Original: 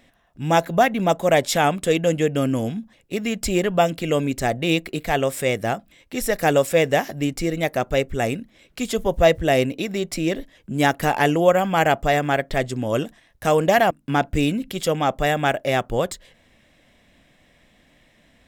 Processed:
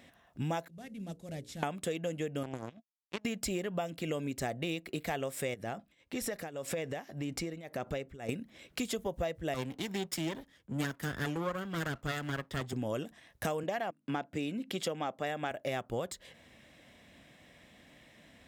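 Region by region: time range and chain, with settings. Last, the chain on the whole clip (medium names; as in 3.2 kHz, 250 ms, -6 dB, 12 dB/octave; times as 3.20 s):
0.68–1.63 s: CVSD coder 64 kbps + amplifier tone stack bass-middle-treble 10-0-1 + hum notches 60/120/180/240/300/360/420/480/540 Hz
2.43–3.25 s: low-pass 5.5 kHz + power-law waveshaper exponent 3
5.54–8.29 s: treble shelf 9.6 kHz -9 dB + compression 4:1, threshold -27 dBFS + tremolo triangle 1.8 Hz, depth 90%
9.54–12.73 s: comb filter that takes the minimum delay 0.6 ms + three bands expanded up and down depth 70%
13.63–15.51 s: high-pass 170 Hz + treble shelf 9 kHz -10.5 dB
whole clip: high-pass 68 Hz; compression 10:1, threshold -31 dBFS; trim -1 dB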